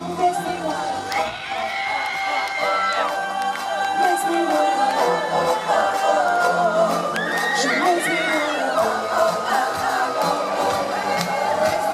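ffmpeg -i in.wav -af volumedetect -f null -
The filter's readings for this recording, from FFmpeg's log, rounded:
mean_volume: -20.7 dB
max_volume: -5.0 dB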